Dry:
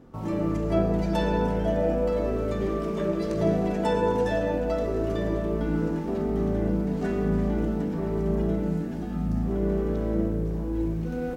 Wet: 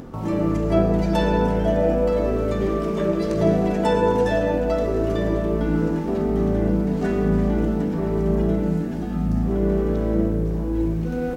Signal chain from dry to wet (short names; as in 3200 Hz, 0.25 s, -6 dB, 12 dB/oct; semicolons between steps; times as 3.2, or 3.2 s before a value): upward compressor, threshold -35 dBFS; gain +5 dB